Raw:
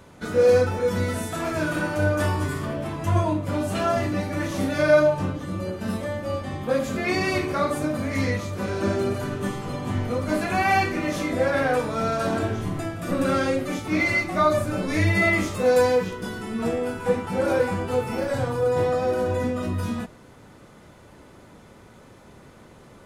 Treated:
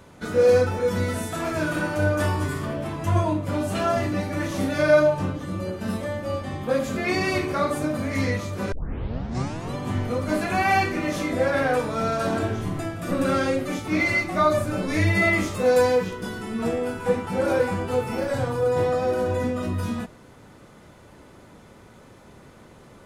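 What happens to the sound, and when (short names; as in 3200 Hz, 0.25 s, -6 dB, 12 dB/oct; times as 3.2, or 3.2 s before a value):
8.72 tape start 1.03 s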